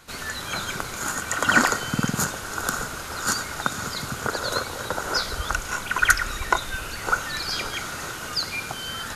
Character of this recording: noise floor -35 dBFS; spectral tilt -3.5 dB/octave

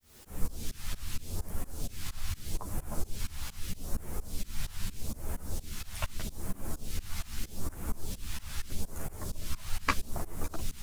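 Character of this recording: phasing stages 2, 0.8 Hz, lowest notch 370–3800 Hz; a quantiser's noise floor 10-bit, dither triangular; tremolo saw up 4.3 Hz, depth 100%; a shimmering, thickened sound

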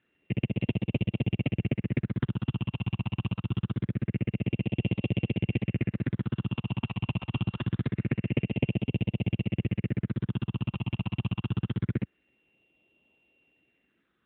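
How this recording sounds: a buzz of ramps at a fixed pitch in blocks of 16 samples; phasing stages 6, 0.25 Hz, lowest notch 480–1400 Hz; AMR-NB

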